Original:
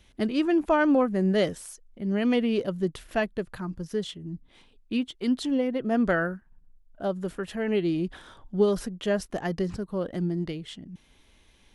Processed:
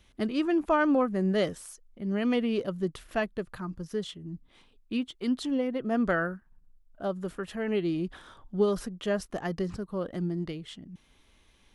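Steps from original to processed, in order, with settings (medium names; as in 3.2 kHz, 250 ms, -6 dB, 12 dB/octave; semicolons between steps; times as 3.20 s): peaking EQ 1.2 kHz +4.5 dB 0.35 oct; trim -3 dB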